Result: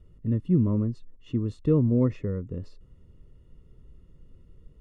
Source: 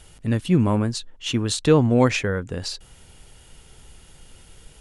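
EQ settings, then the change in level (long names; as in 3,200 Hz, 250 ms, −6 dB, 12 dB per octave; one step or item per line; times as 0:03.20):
moving average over 56 samples
−2.5 dB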